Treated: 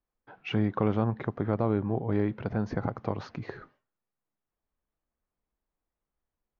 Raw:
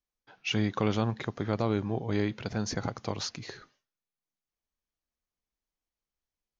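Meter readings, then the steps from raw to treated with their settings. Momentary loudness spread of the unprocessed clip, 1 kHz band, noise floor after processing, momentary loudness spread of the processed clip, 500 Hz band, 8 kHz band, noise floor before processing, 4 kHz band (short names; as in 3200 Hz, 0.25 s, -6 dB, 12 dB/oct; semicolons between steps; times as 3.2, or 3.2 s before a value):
9 LU, +1.0 dB, under -85 dBFS, 14 LU, +2.0 dB, n/a, under -85 dBFS, -10.0 dB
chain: LPF 1400 Hz 12 dB/oct; in parallel at +2 dB: compressor, threshold -40 dBFS, peak gain reduction 17 dB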